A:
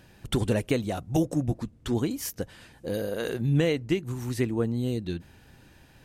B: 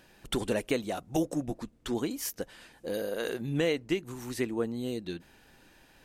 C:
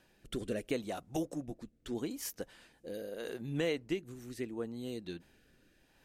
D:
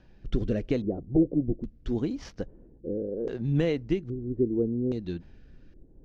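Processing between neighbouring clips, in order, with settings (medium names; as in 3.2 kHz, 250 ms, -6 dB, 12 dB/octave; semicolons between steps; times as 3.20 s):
peaking EQ 95 Hz -14.5 dB 1.7 oct; trim -1 dB
rotary cabinet horn 0.75 Hz; trim -5 dB
median filter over 5 samples; LFO low-pass square 0.61 Hz 400–5700 Hz; RIAA curve playback; trim +3 dB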